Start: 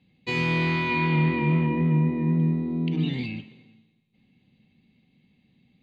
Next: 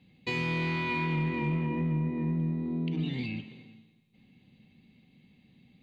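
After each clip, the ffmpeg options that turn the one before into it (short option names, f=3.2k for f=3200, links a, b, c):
-filter_complex "[0:a]asplit=2[a][b];[b]aeval=exprs='clip(val(0),-1,0.0668)':c=same,volume=-9dB[c];[a][c]amix=inputs=2:normalize=0,acompressor=threshold=-35dB:ratio=2"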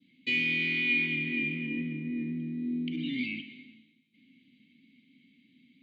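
-filter_complex "[0:a]adynamicequalizer=threshold=0.00398:dfrequency=2500:dqfactor=1.7:tfrequency=2500:tqfactor=1.7:attack=5:release=100:ratio=0.375:range=3:mode=boostabove:tftype=bell,asplit=3[a][b][c];[a]bandpass=f=270:t=q:w=8,volume=0dB[d];[b]bandpass=f=2.29k:t=q:w=8,volume=-6dB[e];[c]bandpass=f=3.01k:t=q:w=8,volume=-9dB[f];[d][e][f]amix=inputs=3:normalize=0,crystalizer=i=4:c=0,volume=7dB"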